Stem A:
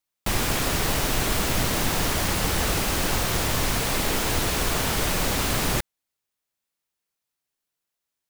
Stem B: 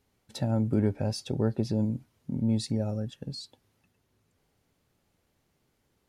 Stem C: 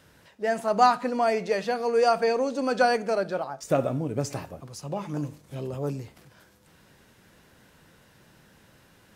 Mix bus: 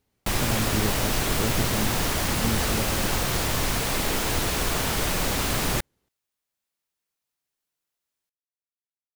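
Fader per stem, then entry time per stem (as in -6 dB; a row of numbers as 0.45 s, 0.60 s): -1.0 dB, -2.5 dB, mute; 0.00 s, 0.00 s, mute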